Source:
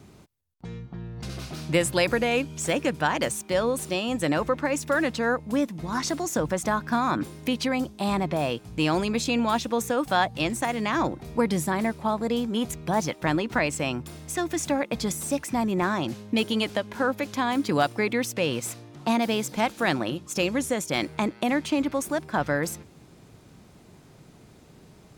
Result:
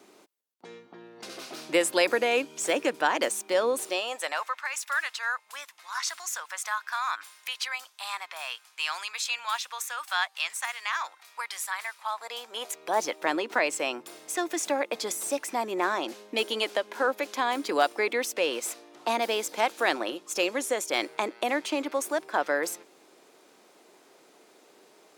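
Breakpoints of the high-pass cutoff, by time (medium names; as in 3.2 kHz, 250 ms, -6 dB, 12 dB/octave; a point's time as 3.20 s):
high-pass 24 dB/octave
3.75 s 310 Hz
4.59 s 1.1 kHz
11.98 s 1.1 kHz
13.02 s 350 Hz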